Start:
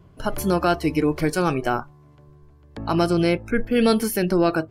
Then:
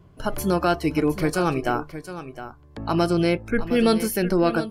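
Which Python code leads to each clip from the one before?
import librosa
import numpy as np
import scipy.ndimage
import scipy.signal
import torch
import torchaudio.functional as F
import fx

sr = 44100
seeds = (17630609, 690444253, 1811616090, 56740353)

y = x + 10.0 ** (-12.5 / 20.0) * np.pad(x, (int(713 * sr / 1000.0), 0))[:len(x)]
y = y * librosa.db_to_amplitude(-1.0)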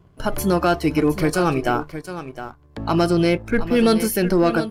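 y = fx.leveller(x, sr, passes=1)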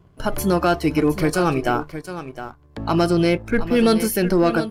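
y = x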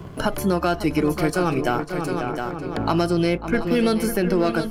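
y = fx.echo_filtered(x, sr, ms=544, feedback_pct=43, hz=2000.0, wet_db=-10.0)
y = fx.band_squash(y, sr, depth_pct=70)
y = y * librosa.db_to_amplitude(-3.0)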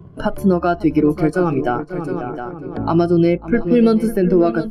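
y = fx.spectral_expand(x, sr, expansion=1.5)
y = y * librosa.db_to_amplitude(3.5)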